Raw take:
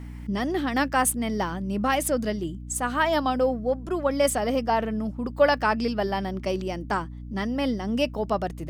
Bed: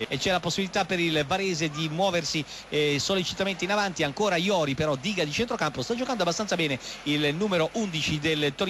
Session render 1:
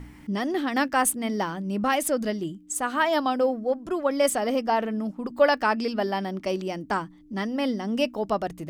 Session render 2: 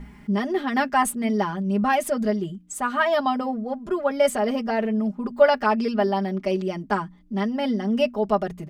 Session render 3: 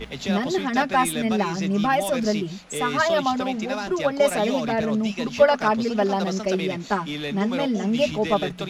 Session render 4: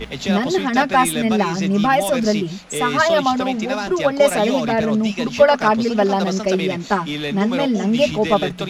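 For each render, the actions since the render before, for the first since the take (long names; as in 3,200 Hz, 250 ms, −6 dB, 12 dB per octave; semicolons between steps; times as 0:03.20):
hum removal 60 Hz, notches 4
high-shelf EQ 3,900 Hz −8.5 dB; comb filter 4.9 ms, depth 91%
mix in bed −5 dB
level +5 dB; brickwall limiter −2 dBFS, peak gain reduction 2 dB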